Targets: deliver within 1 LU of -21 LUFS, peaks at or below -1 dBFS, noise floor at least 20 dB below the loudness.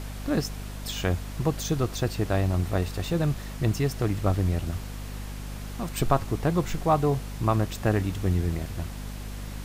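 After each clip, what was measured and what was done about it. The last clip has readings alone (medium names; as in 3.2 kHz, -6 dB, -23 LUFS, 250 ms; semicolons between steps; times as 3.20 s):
hum 50 Hz; highest harmonic 250 Hz; hum level -34 dBFS; noise floor -37 dBFS; noise floor target -48 dBFS; loudness -28.0 LUFS; peak level -8.0 dBFS; loudness target -21.0 LUFS
-> de-hum 50 Hz, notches 5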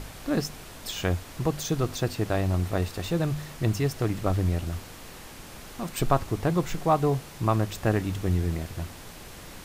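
hum not found; noise floor -44 dBFS; noise floor target -48 dBFS
-> noise print and reduce 6 dB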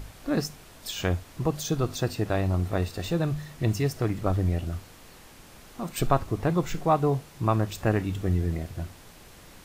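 noise floor -50 dBFS; loudness -28.0 LUFS; peak level -8.5 dBFS; loudness target -21.0 LUFS
-> trim +7 dB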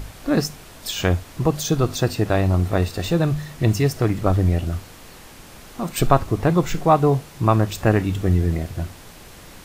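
loudness -21.0 LUFS; peak level -1.5 dBFS; noise floor -43 dBFS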